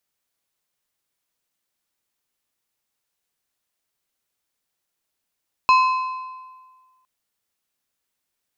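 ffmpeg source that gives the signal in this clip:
ffmpeg -f lavfi -i "aevalsrc='0.316*pow(10,-3*t/1.56)*sin(2*PI*1030*t)+0.119*pow(10,-3*t/1.185)*sin(2*PI*2575*t)+0.0447*pow(10,-3*t/1.029)*sin(2*PI*4120*t)+0.0168*pow(10,-3*t/0.963)*sin(2*PI*5150*t)+0.00631*pow(10,-3*t/0.89)*sin(2*PI*6695*t)':duration=1.36:sample_rate=44100" out.wav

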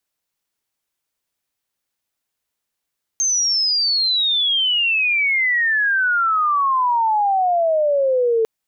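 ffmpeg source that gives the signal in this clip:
ffmpeg -f lavfi -i "aevalsrc='pow(10,(-15.5+1.5*t/5.25)/20)*sin(2*PI*6400*5.25/log(440/6400)*(exp(log(440/6400)*t/5.25)-1))':duration=5.25:sample_rate=44100" out.wav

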